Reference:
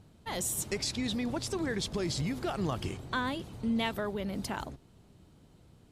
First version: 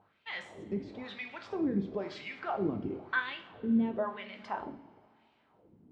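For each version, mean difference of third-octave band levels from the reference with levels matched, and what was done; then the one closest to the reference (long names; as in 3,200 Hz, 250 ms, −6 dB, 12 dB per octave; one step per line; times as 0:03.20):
10.5 dB: low-pass filter 3,900 Hz 12 dB per octave
LFO wah 0.99 Hz 240–2,600 Hz, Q 2.5
coupled-rooms reverb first 0.43 s, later 2.4 s, from −19 dB, DRR 4.5 dB
level +5.5 dB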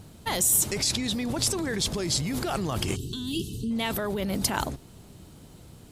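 5.0 dB: in parallel at +2 dB: compressor whose output falls as the input rises −37 dBFS, ratio −0.5
on the sum: gain on a spectral selection 0:02.96–0:03.71, 470–2,600 Hz −26 dB
high-shelf EQ 6,300 Hz +11 dB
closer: second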